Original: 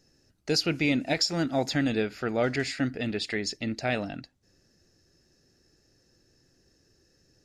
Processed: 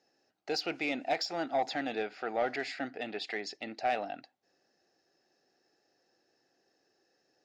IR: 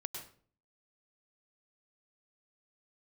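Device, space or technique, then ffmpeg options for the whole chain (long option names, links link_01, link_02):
intercom: -af "highpass=390,lowpass=4300,equalizer=frequency=760:width_type=o:width=0.36:gain=11.5,asoftclip=type=tanh:threshold=-17.5dB,volume=-4dB"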